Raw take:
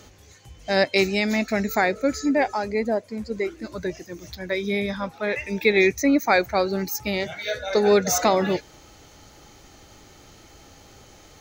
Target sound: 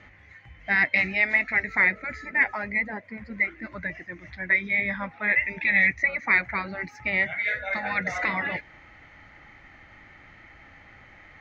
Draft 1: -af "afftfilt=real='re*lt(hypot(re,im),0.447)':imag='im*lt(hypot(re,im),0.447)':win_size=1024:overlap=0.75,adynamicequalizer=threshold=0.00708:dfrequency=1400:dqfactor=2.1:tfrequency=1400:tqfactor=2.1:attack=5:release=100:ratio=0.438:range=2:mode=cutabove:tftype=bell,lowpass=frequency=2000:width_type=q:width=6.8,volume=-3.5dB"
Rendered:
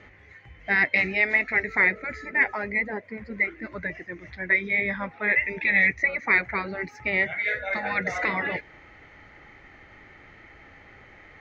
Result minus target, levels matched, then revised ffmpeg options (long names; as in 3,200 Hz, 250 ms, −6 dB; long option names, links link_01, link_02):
500 Hz band +4.0 dB
-af "afftfilt=real='re*lt(hypot(re,im),0.447)':imag='im*lt(hypot(re,im),0.447)':win_size=1024:overlap=0.75,adynamicequalizer=threshold=0.00708:dfrequency=1400:dqfactor=2.1:tfrequency=1400:tqfactor=2.1:attack=5:release=100:ratio=0.438:range=2:mode=cutabove:tftype=bell,lowpass=frequency=2000:width_type=q:width=6.8,equalizer=frequency=420:width=2.8:gain=-9.5,volume=-3.5dB"